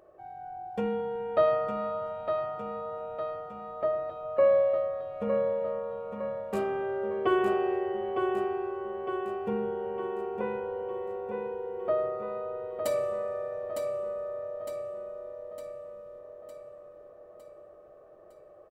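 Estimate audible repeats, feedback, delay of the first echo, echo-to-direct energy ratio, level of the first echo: 6, 55%, 908 ms, -4.5 dB, -6.0 dB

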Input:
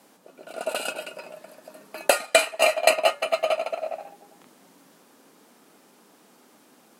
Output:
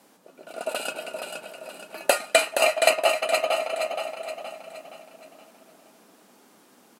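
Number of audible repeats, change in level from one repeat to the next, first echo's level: 5, -7.0 dB, -6.0 dB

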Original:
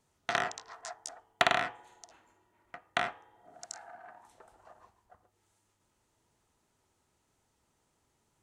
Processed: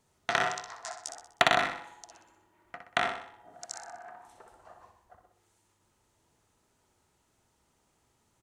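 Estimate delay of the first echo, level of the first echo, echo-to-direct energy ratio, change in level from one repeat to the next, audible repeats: 62 ms, -7.0 dB, -6.0 dB, -6.5 dB, 5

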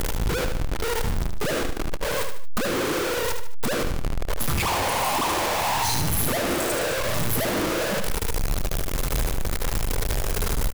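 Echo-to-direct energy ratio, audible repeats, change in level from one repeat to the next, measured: -6.0 dB, 3, -7.5 dB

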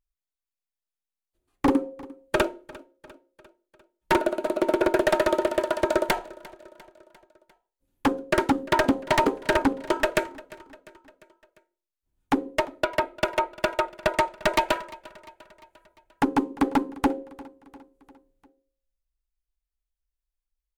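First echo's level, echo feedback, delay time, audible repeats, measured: -21.0 dB, 56%, 349 ms, 3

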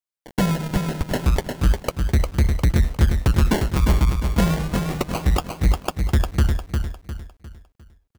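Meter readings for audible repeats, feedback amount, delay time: 4, 38%, 353 ms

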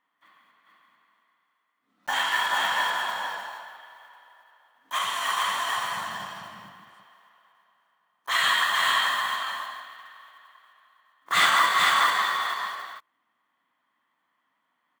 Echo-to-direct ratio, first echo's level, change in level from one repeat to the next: -3.0 dB, -3.0 dB, no regular repeats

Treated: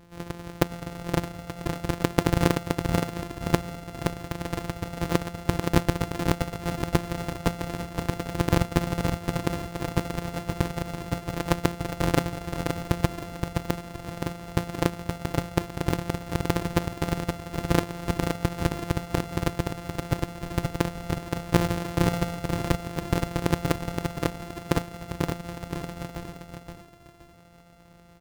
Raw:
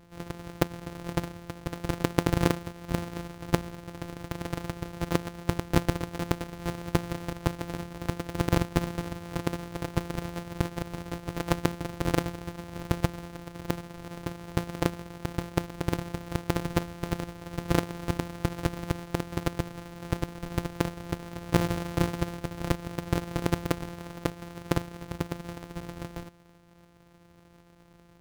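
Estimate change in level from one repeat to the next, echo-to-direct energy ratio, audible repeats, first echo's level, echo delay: -10.0 dB, -4.5 dB, 3, -5.0 dB, 521 ms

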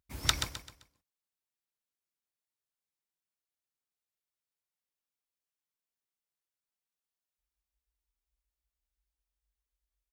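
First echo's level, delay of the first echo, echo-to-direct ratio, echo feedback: -8.5 dB, 130 ms, -8.0 dB, 35%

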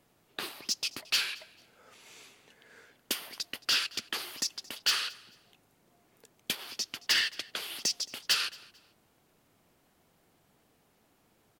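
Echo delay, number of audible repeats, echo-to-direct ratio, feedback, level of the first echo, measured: 222 ms, 2, -22.0 dB, 26%, -22.5 dB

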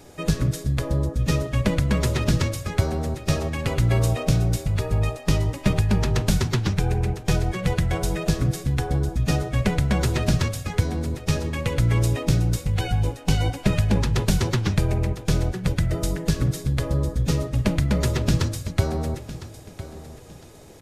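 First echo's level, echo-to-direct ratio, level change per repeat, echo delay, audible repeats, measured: -15.0 dB, -14.5 dB, -11.5 dB, 1007 ms, 2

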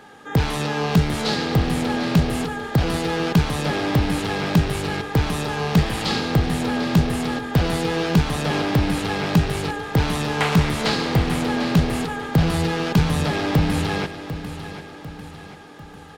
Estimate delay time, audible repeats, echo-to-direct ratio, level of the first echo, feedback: 747 ms, 4, -11.0 dB, -12.0 dB, 49%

